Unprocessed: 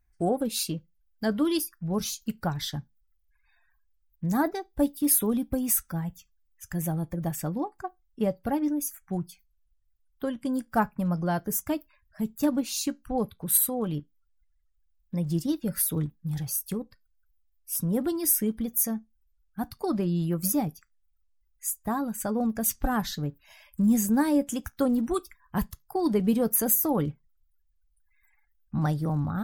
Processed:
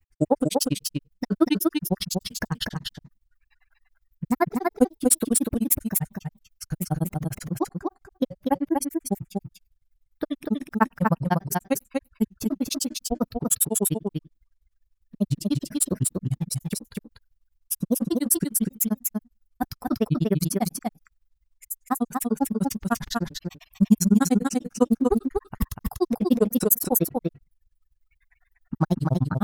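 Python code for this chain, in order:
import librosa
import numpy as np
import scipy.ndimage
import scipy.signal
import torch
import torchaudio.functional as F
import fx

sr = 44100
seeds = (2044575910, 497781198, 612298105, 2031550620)

p1 = fx.granulator(x, sr, seeds[0], grain_ms=51.0, per_s=10.0, spray_ms=14.0, spread_st=3)
p2 = p1 + fx.echo_single(p1, sr, ms=242, db=-3.5, dry=0)
y = F.gain(torch.from_numpy(p2), 9.0).numpy()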